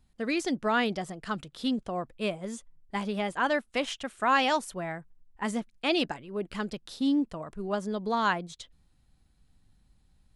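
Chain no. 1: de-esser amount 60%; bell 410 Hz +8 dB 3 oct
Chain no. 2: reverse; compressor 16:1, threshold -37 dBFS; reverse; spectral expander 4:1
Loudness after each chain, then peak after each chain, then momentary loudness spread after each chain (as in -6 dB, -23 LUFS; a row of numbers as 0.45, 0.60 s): -24.5, -44.0 LUFS; -8.0, -25.0 dBFS; 11, 19 LU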